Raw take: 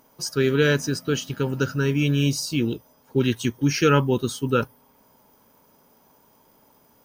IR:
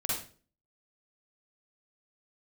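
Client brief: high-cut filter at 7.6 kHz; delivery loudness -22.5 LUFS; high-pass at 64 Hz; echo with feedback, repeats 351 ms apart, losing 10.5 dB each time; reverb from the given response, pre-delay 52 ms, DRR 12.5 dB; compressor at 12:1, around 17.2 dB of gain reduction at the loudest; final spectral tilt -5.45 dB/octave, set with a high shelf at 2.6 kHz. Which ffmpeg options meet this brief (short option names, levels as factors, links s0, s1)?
-filter_complex "[0:a]highpass=64,lowpass=7600,highshelf=f=2600:g=-5,acompressor=threshold=0.0251:ratio=12,aecho=1:1:351|702|1053:0.299|0.0896|0.0269,asplit=2[s0][s1];[1:a]atrim=start_sample=2205,adelay=52[s2];[s1][s2]afir=irnorm=-1:irlink=0,volume=0.119[s3];[s0][s3]amix=inputs=2:normalize=0,volume=5.31"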